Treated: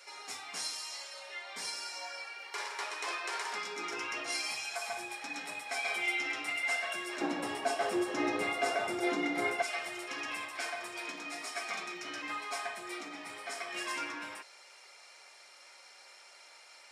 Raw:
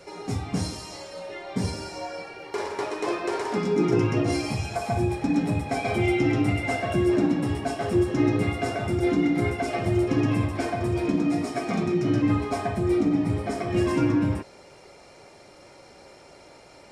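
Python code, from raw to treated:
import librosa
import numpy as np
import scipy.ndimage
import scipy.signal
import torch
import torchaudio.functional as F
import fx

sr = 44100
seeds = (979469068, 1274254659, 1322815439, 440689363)

y = fx.highpass(x, sr, hz=fx.steps((0.0, 1400.0), (7.21, 620.0), (9.62, 1400.0)), slope=12)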